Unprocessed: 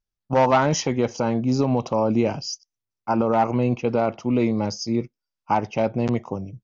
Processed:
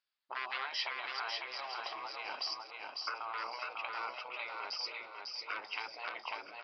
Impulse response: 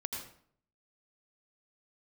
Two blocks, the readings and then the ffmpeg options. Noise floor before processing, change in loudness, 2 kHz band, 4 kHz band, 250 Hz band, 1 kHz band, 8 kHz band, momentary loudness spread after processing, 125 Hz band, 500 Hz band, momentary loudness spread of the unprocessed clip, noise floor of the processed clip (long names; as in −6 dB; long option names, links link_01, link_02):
below −85 dBFS, −17.0 dB, −4.5 dB, −3.5 dB, below −40 dB, −16.0 dB, can't be measured, 5 LU, below −40 dB, −28.0 dB, 8 LU, −55 dBFS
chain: -filter_complex "[0:a]acompressor=threshold=-30dB:ratio=5,afftfilt=real='re*lt(hypot(re,im),0.0631)':imag='im*lt(hypot(re,im),0.0631)':win_size=1024:overlap=0.75,highpass=1100,asplit=2[link_01][link_02];[link_02]aecho=0:1:963:0.15[link_03];[link_01][link_03]amix=inputs=2:normalize=0,aresample=11025,aresample=44100,asplit=2[link_04][link_05];[link_05]aecho=0:1:548|1096|1644|2192:0.668|0.221|0.0728|0.024[link_06];[link_04][link_06]amix=inputs=2:normalize=0,volume=7dB"